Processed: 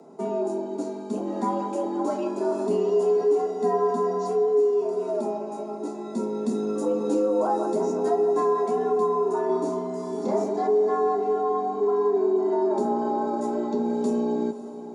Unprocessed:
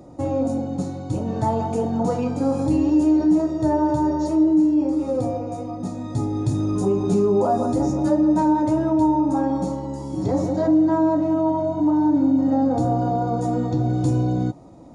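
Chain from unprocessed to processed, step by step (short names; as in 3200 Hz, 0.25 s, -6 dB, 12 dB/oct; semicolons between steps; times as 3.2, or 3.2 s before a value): 9.46–10.44 doubler 30 ms -3 dB; frequency shift +110 Hz; diffused feedback echo 0.552 s, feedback 49%, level -14 dB; gain -4.5 dB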